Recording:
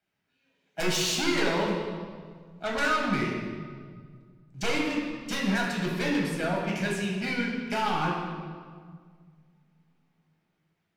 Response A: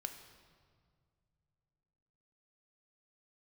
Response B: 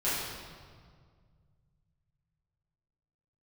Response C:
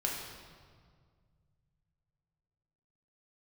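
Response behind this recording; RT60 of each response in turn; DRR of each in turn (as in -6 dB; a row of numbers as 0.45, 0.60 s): C; 2.1, 1.9, 1.9 s; 6.0, -12.5, -2.5 dB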